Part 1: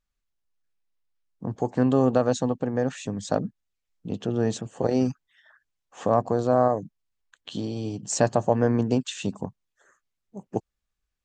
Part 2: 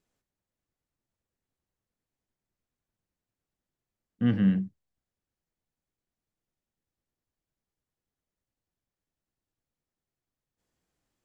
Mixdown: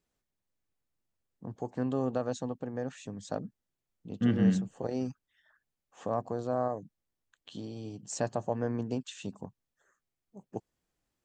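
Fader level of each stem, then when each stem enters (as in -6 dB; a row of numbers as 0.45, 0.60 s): -10.5, -2.0 dB; 0.00, 0.00 s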